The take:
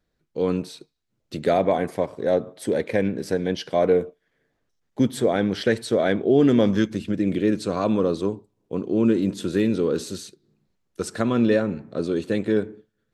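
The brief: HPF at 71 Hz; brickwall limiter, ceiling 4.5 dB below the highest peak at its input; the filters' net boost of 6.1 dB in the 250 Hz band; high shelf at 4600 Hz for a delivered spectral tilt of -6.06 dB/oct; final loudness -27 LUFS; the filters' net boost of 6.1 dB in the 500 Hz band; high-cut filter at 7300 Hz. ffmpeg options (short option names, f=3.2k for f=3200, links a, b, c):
-af "highpass=71,lowpass=7.3k,equalizer=f=250:t=o:g=6,equalizer=f=500:t=o:g=5.5,highshelf=f=4.6k:g=3.5,volume=-8.5dB,alimiter=limit=-14.5dB:level=0:latency=1"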